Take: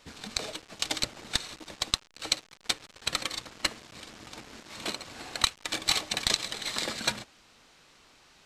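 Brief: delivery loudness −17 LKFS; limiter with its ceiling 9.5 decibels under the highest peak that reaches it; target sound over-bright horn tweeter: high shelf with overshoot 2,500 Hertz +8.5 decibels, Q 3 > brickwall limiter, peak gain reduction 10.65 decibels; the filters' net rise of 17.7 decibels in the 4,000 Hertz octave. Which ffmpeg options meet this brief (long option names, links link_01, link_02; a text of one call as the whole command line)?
ffmpeg -i in.wav -af "equalizer=frequency=4000:width_type=o:gain=5,alimiter=limit=-12dB:level=0:latency=1,highshelf=frequency=2500:width_type=q:width=3:gain=8.5,volume=7dB,alimiter=limit=-2.5dB:level=0:latency=1" out.wav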